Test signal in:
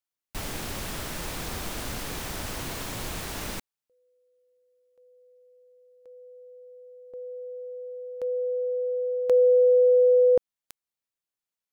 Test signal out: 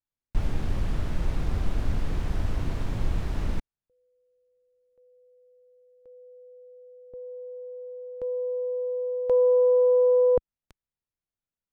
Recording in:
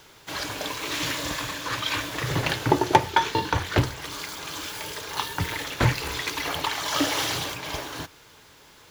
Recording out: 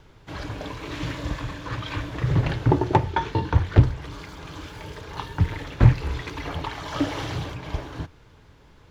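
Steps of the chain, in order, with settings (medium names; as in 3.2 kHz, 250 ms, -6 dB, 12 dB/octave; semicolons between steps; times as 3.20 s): RIAA curve playback; loudspeaker Doppler distortion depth 0.33 ms; trim -4 dB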